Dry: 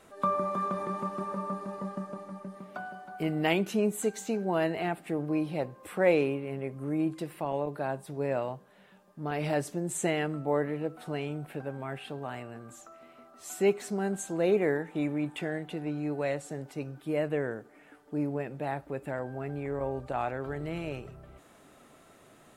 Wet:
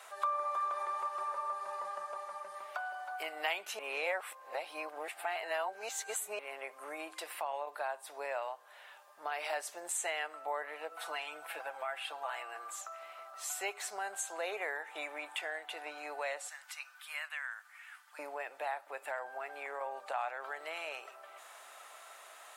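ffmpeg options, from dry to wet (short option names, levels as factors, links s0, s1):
-filter_complex "[0:a]asettb=1/sr,asplit=3[s0][s1][s2];[s0]atrim=end=10.914[s3];[s1]atrim=start=10.91:end=12.81,asetpts=PTS-STARTPTS,afade=t=in:d=0.004:c=qsin,afade=t=out:st=1.896:d=0.004:c=qsin,aecho=1:1:6:0.65,atrim=end_sample=83790[s4];[s2]atrim=start=12.806[s5];[s3][s4]acrossfade=d=0.004:c1=hsin:c2=qsin[s6];[s6][s5]acrossfade=d=0.004:c1=qsin:c2=hsin,asettb=1/sr,asplit=3[s7][s8][s9];[s7]atrim=end=16.484[s10];[s8]atrim=start=16.48:end=18.19,asetpts=PTS-STARTPTS,afade=t=in:d=0.004:c=qsin,afade=t=out:st=1.706:d=0.004:c=qsin,highpass=f=1200:w=0.5412,highpass=f=1200:w=1.3066[s11];[s9]atrim=start=18.186[s12];[s10][s11]acrossfade=d=0.004:c1=hsin:c2=qsin[s13];[s13][s12]acrossfade=d=0.004:c1=qsin:c2=hsin,asplit=3[s14][s15][s16];[s14]atrim=end=3.792[s17];[s15]atrim=start=3.788:end=6.392,asetpts=PTS-STARTPTS,areverse[s18];[s16]atrim=start=6.388[s19];[s17][s18]acrossfade=d=0.004:c1=hsin:c2=hsin[s20];[s20][s19]acrossfade=d=0.004:c1=hsin:c2=hsin,highpass=f=720:w=0.5412,highpass=f=720:w=1.3066,acompressor=threshold=0.00398:ratio=2,volume=2.37"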